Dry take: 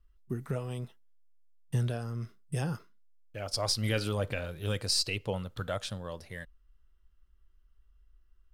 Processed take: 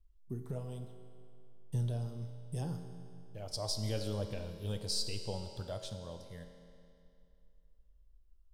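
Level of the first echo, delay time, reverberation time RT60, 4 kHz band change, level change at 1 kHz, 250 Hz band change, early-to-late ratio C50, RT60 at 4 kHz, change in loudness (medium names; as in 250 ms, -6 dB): no echo, no echo, 2.6 s, -7.0 dB, -8.5 dB, -5.5 dB, 7.5 dB, 2.3 s, -6.0 dB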